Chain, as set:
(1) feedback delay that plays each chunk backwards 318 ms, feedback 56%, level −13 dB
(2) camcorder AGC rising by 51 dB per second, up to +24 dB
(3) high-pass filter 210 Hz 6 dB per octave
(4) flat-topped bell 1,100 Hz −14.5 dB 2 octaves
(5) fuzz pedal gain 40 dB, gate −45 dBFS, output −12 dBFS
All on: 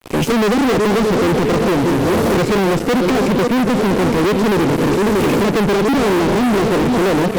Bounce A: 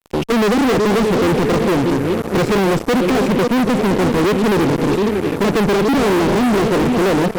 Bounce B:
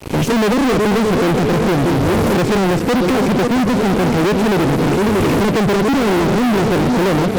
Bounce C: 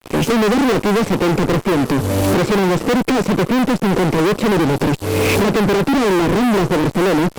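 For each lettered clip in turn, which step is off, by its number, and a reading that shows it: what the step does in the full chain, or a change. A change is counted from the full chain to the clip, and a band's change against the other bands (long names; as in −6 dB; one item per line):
2, change in momentary loudness spread +2 LU
3, 125 Hz band +2.5 dB
1, change in momentary loudness spread +1 LU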